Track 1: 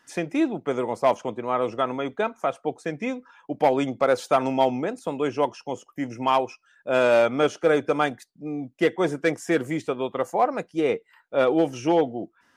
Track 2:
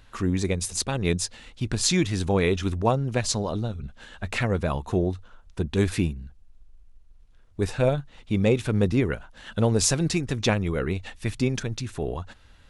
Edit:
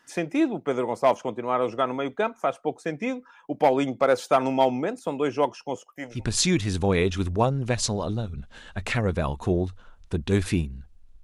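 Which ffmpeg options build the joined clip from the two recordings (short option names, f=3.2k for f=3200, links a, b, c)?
-filter_complex "[0:a]asettb=1/sr,asplit=3[a][b][c];[a]atrim=end=5.764[d];[b]atrim=start=5.76:end=6.25,asetpts=PTS-STARTPTS,afade=t=in:d=0.004:c=qsin,afade=t=out:st=0.486:d=0.004:c=qsin,lowshelf=f=400:t=q:w=1.5:g=-8[e];[c]atrim=start=6.246[f];[d][e]acrossfade=d=0.004:c1=hsin:c2=qsin[g];[g][f]acrossfade=d=0.004:c1=qsin:c2=hsin,apad=whole_dur=11.23,atrim=end=11.23,atrim=end=6.25,asetpts=PTS-STARTPTS[h];[1:a]atrim=start=1.53:end=6.69,asetpts=PTS-STARTPTS[i];[h][i]acrossfade=d=0.18:c1=tri:c2=tri"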